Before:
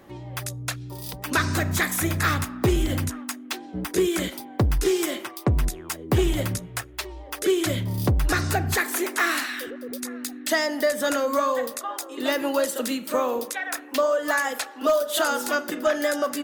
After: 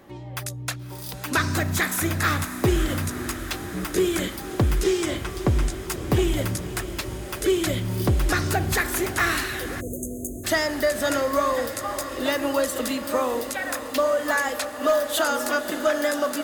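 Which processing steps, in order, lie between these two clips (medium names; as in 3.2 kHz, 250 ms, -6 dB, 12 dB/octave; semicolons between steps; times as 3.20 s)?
4.83–5.74 s: Savitzky-Golay filter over 9 samples; echo that smears into a reverb 576 ms, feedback 77%, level -12.5 dB; 9.81–10.44 s: spectral selection erased 690–6200 Hz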